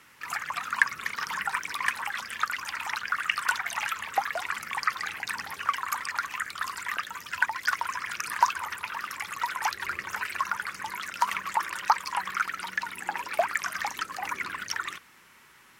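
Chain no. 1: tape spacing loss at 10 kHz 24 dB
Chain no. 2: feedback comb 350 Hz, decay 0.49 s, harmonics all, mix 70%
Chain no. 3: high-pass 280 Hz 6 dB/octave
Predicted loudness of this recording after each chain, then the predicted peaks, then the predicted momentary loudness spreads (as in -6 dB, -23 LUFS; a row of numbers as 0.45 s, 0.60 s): -34.0 LUFS, -39.5 LUFS, -30.5 LUFS; -9.5 dBFS, -15.0 dBFS, -5.5 dBFS; 8 LU, 7 LU, 7 LU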